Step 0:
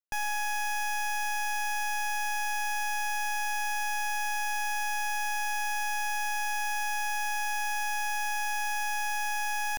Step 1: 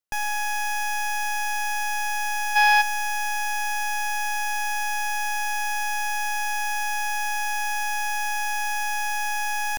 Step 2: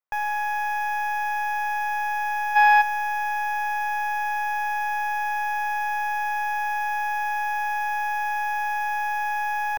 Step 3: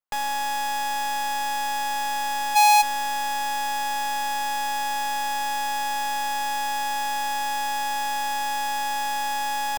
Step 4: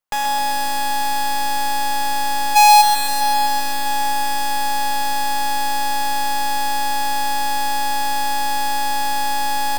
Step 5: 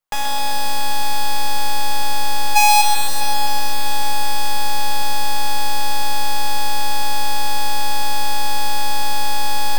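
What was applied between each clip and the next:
time-frequency box 2.56–2.81 s, 490–5400 Hz +11 dB; trim +4.5 dB
graphic EQ 250/500/1000/2000/4000/8000 Hz -9/+7/+11/+6/-3/-11 dB; trim -7.5 dB
square wave that keeps the level; trim -4.5 dB
bit-crushed delay 130 ms, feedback 80%, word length 8-bit, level -7 dB; trim +6 dB
reverberation RT60 0.80 s, pre-delay 6 ms, DRR 4.5 dB

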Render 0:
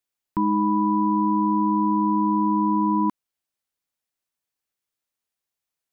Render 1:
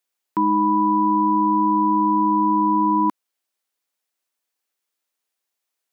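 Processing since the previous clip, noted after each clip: high-pass 290 Hz 12 dB/octave; trim +5 dB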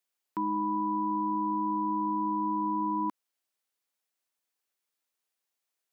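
peak limiter -18.5 dBFS, peak gain reduction 7.5 dB; trim -4.5 dB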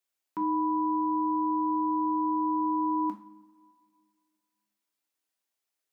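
two-slope reverb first 0.4 s, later 2.3 s, from -20 dB, DRR 2.5 dB; trim -2.5 dB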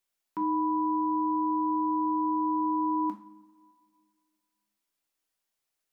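SBC 192 kbps 44.1 kHz

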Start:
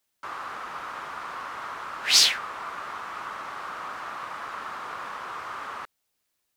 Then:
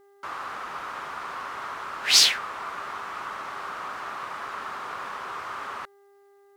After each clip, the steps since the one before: mains buzz 400 Hz, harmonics 5, -58 dBFS -9 dB/octave; trim +1 dB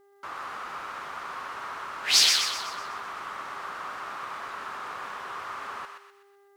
thinning echo 125 ms, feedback 48%, high-pass 1.1 kHz, level -4 dB; trim -3 dB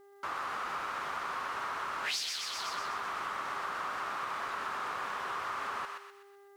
compression 20:1, threshold -34 dBFS, peak gain reduction 19.5 dB; trim +2 dB

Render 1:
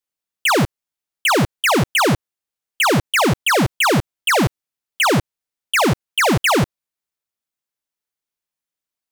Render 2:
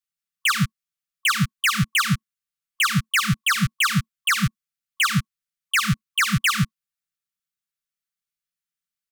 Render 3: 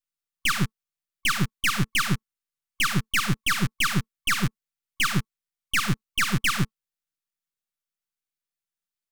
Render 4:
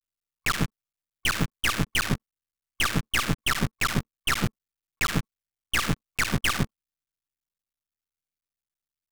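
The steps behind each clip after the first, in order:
FFT band-reject 220–1100 Hz; comb 5.9 ms, depth 42%; trim -3.5 dB
partial rectifier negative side -12 dB
cycle switcher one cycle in 3, muted

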